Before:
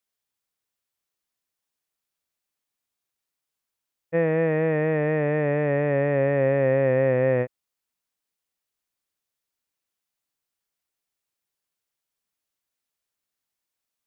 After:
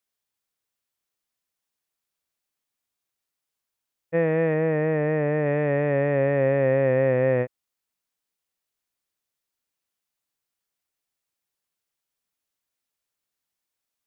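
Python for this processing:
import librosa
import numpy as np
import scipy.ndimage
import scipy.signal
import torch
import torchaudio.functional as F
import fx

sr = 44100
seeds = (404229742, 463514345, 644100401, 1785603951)

y = fx.lowpass(x, sr, hz=2600.0, slope=6, at=(4.54, 5.46))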